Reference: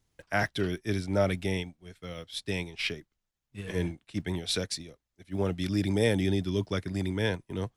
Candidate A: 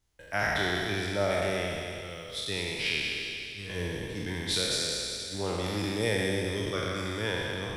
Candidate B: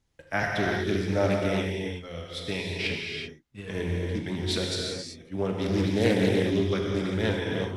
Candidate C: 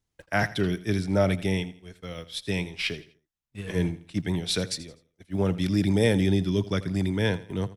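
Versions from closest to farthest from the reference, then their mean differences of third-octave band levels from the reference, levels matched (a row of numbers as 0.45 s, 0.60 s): C, B, A; 2.0 dB, 7.0 dB, 10.0 dB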